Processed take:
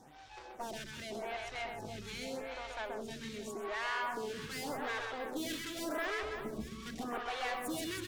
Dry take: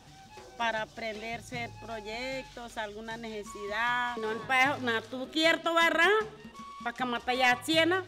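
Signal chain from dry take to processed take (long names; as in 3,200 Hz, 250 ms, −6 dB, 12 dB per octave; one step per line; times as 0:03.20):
0:06.10–0:06.67: spectral tilt −4 dB per octave
tube saturation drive 38 dB, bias 0.65
on a send: reverse bouncing-ball delay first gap 130 ms, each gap 1.5×, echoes 5
on the sum: phaser with staggered stages 0.85 Hz
level +3 dB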